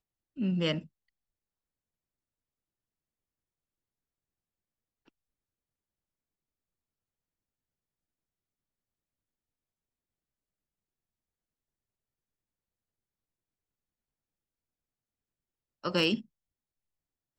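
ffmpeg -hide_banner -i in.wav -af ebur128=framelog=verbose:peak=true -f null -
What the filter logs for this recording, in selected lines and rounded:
Integrated loudness:
  I:         -31.0 LUFS
  Threshold: -41.9 LUFS
Loudness range:
  LRA:         9.6 LU
  Threshold: -58.0 LUFS
  LRA low:   -46.3 LUFS
  LRA high:  -36.7 LUFS
True peak:
  Peak:      -15.4 dBFS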